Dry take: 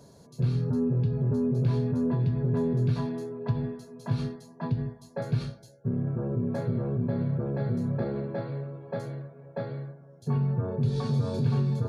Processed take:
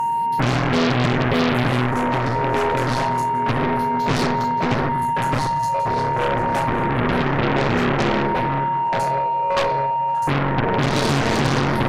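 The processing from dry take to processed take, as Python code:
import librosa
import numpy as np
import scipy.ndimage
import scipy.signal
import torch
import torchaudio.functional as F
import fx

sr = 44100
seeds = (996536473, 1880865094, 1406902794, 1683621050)

p1 = fx.peak_eq(x, sr, hz=89.0, db=-7.0, octaves=0.53)
p2 = p1 + fx.echo_split(p1, sr, split_hz=400.0, low_ms=95, high_ms=576, feedback_pct=52, wet_db=-11.5, dry=0)
p3 = fx.phaser_stages(p2, sr, stages=4, low_hz=220.0, high_hz=1900.0, hz=0.29, feedback_pct=40)
p4 = fx.rev_spring(p3, sr, rt60_s=1.6, pass_ms=(45, 49), chirp_ms=50, drr_db=9.0)
p5 = fx.cheby_harmonics(p4, sr, harmonics=(4, 8), levels_db=(-10, -19), full_scale_db=-14.5)
p6 = p5 + 10.0 ** (-36.0 / 20.0) * np.sin(2.0 * np.pi * 930.0 * np.arange(len(p5)) / sr)
p7 = fx.fold_sine(p6, sr, drive_db=18, ceiling_db=-13.5)
p8 = p6 + (p7 * 10.0 ** (-11.5 / 20.0))
p9 = fx.low_shelf(p8, sr, hz=210.0, db=-7.0)
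y = p9 * 10.0 ** (6.5 / 20.0)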